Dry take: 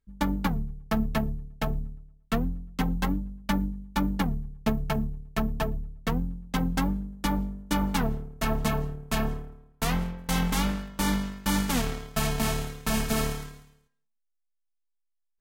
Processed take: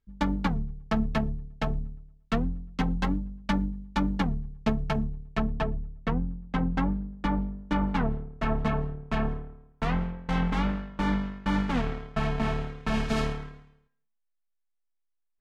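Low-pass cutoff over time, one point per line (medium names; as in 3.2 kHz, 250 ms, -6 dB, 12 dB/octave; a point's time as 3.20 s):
4.94 s 5.1 kHz
6.20 s 2.3 kHz
12.74 s 2.3 kHz
13.19 s 4.5 kHz
13.39 s 2.4 kHz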